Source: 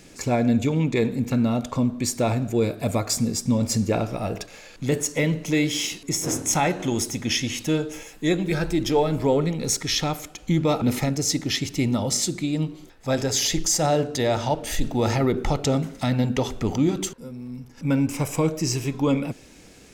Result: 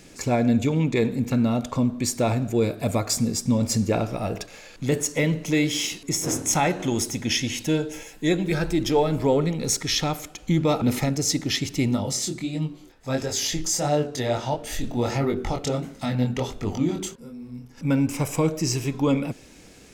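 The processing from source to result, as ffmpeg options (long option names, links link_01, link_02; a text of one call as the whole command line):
ffmpeg -i in.wav -filter_complex "[0:a]asettb=1/sr,asplit=3[link_01][link_02][link_03];[link_01]atrim=end=7.204[link_04];[link_02]atrim=start=7.2:end=8.44,asetpts=PTS-STARTPTS,afade=type=in:duration=0.004:curve=qsin,afade=type=out:start_time=1.236:duration=0.004:curve=qsin,asuperstop=centerf=1200:order=8:qfactor=7.7[link_05];[link_03]atrim=start=8.436[link_06];[link_04][link_05]acrossfade=duration=0.004:curve1=hsin:curve2=qsin[link_07];[link_07][link_06]acrossfade=duration=0.004:curve1=qsin:curve2=hsin,asplit=3[link_08][link_09][link_10];[link_08]afade=type=out:start_time=11.95:duration=0.02[link_11];[link_09]flanger=delay=20:depth=5.2:speed=1.5,afade=type=in:start_time=11.95:duration=0.02,afade=type=out:start_time=17.7:duration=0.02[link_12];[link_10]afade=type=in:start_time=17.7:duration=0.02[link_13];[link_11][link_12][link_13]amix=inputs=3:normalize=0" out.wav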